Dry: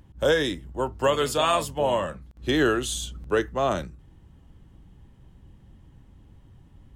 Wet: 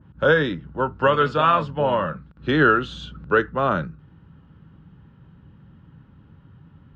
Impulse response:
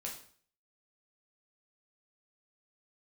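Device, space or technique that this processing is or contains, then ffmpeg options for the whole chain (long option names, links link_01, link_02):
guitar cabinet: -af "highpass=93,equalizer=frequency=160:width_type=q:width=4:gain=7,equalizer=frequency=350:width_type=q:width=4:gain=-4,equalizer=frequency=700:width_type=q:width=4:gain=-7,equalizer=frequency=1400:width_type=q:width=4:gain=10,equalizer=frequency=2100:width_type=q:width=4:gain=-5,equalizer=frequency=3300:width_type=q:width=4:gain=-4,lowpass=frequency=3600:width=0.5412,lowpass=frequency=3600:width=1.3066,adynamicequalizer=threshold=0.0178:dfrequency=1800:dqfactor=0.7:tfrequency=1800:tqfactor=0.7:attack=5:release=100:ratio=0.375:range=3:mode=cutabove:tftype=highshelf,volume=4.5dB"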